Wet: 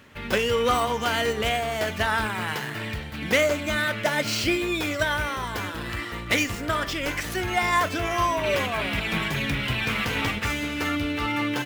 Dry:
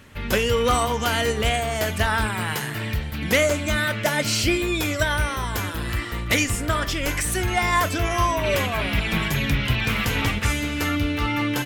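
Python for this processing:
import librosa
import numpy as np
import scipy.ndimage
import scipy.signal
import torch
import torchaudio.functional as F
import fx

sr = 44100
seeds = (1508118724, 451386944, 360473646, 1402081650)

y = scipy.signal.medfilt(x, 5)
y = fx.low_shelf(y, sr, hz=110.0, db=-11.5)
y = F.gain(torch.from_numpy(y), -1.0).numpy()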